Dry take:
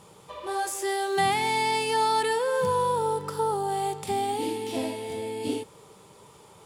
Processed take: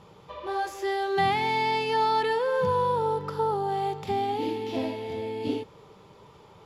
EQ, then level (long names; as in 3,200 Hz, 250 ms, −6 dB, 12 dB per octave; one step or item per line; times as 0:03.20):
moving average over 5 samples
low-shelf EQ 82 Hz +7.5 dB
0.0 dB